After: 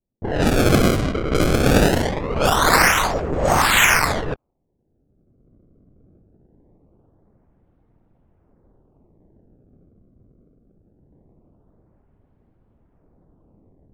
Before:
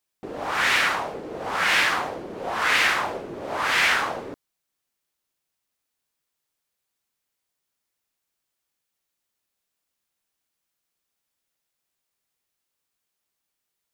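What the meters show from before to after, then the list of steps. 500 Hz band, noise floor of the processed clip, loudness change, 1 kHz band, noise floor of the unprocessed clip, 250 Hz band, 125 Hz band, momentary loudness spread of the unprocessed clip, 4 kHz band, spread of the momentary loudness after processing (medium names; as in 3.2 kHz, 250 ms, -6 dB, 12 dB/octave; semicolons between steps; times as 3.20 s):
+11.5 dB, -68 dBFS, +4.5 dB, +5.5 dB, -82 dBFS, +17.0 dB, +23.5 dB, 14 LU, +3.0 dB, 10 LU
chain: recorder AGC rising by 19 dB/s; time-frequency box 10.46–11.12 s, 520–2200 Hz -12 dB; monotone LPC vocoder at 8 kHz 150 Hz; decimation with a swept rate 28×, swing 160% 0.22 Hz; level-controlled noise filter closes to 350 Hz, open at -19 dBFS; trim +6 dB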